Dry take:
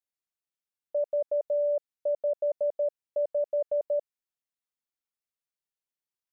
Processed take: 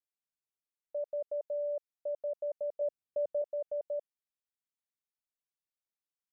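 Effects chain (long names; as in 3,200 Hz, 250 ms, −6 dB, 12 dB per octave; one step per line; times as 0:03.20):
0:02.81–0:03.42: low-shelf EQ 430 Hz +9.5 dB
level −8 dB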